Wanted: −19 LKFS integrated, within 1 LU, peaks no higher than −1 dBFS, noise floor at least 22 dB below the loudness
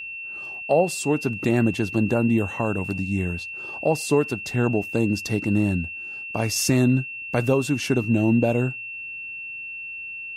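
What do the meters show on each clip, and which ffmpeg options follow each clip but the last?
interfering tone 2,700 Hz; level of the tone −32 dBFS; integrated loudness −24.0 LKFS; sample peak −7.5 dBFS; target loudness −19.0 LKFS
→ -af "bandreject=frequency=2700:width=30"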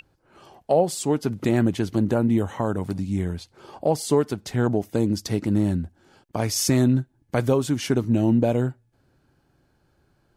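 interfering tone none found; integrated loudness −23.5 LKFS; sample peak −8.0 dBFS; target loudness −19.0 LKFS
→ -af "volume=4.5dB"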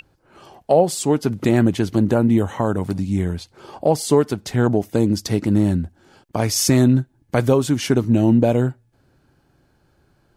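integrated loudness −19.0 LKFS; sample peak −3.5 dBFS; background noise floor −62 dBFS

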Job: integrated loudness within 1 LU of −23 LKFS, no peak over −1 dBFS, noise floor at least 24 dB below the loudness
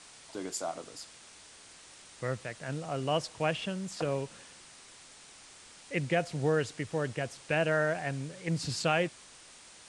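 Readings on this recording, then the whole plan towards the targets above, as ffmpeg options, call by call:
background noise floor −54 dBFS; target noise floor −57 dBFS; integrated loudness −33.0 LKFS; sample peak −14.0 dBFS; target loudness −23.0 LKFS
→ -af "afftdn=noise_reduction=6:noise_floor=-54"
-af "volume=10dB"

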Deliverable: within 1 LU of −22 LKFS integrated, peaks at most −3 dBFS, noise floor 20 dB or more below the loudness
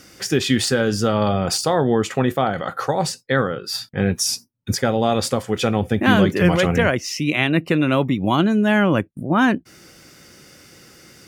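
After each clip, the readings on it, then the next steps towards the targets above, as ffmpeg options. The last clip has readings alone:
integrated loudness −19.5 LKFS; sample peak −2.5 dBFS; target loudness −22.0 LKFS
→ -af "volume=-2.5dB"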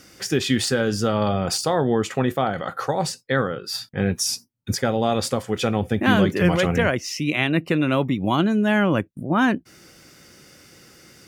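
integrated loudness −22.0 LKFS; sample peak −5.0 dBFS; background noise floor −52 dBFS

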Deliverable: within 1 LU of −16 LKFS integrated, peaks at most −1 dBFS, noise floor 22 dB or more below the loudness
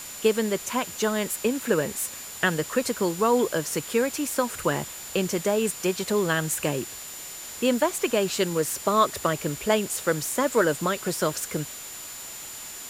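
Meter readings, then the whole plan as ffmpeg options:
interfering tone 7,100 Hz; level of the tone −40 dBFS; background noise floor −39 dBFS; target noise floor −48 dBFS; integrated loudness −26.0 LKFS; sample peak −6.0 dBFS; target loudness −16.0 LKFS
→ -af "bandreject=frequency=7100:width=30"
-af "afftdn=noise_reduction=9:noise_floor=-39"
-af "volume=10dB,alimiter=limit=-1dB:level=0:latency=1"

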